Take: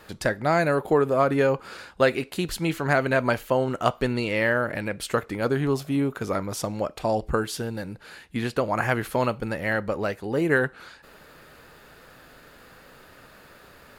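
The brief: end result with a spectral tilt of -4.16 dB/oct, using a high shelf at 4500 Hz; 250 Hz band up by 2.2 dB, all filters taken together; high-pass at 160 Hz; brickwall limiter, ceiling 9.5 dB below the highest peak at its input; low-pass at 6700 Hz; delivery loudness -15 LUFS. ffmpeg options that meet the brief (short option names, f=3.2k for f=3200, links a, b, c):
-af "highpass=160,lowpass=6.7k,equalizer=f=250:t=o:g=3.5,highshelf=f=4.5k:g=8.5,volume=11.5dB,alimiter=limit=-2dB:level=0:latency=1"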